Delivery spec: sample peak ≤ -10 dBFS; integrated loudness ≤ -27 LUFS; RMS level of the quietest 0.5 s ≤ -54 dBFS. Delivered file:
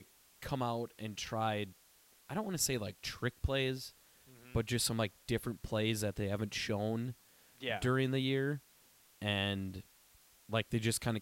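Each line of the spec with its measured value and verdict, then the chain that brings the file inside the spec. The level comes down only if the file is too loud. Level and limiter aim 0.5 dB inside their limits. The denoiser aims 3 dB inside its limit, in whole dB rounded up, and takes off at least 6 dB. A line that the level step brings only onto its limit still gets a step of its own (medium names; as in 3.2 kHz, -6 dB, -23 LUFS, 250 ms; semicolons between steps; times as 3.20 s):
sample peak -18.5 dBFS: pass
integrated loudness -36.5 LUFS: pass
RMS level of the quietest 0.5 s -66 dBFS: pass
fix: none needed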